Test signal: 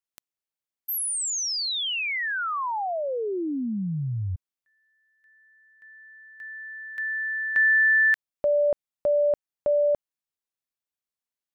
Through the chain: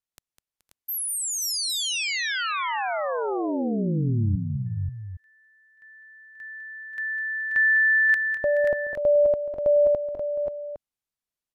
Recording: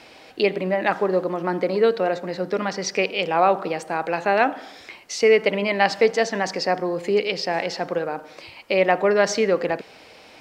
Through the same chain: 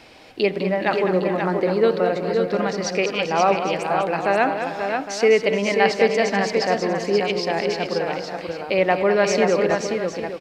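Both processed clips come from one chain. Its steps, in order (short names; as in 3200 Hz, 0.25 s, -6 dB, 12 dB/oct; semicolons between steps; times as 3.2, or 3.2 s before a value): low shelf 140 Hz +9 dB; tapped delay 0.203/0.426/0.511/0.533/0.81 s -9/-15.5/-19/-5.5/-12.5 dB; downsampling 32000 Hz; gain -1 dB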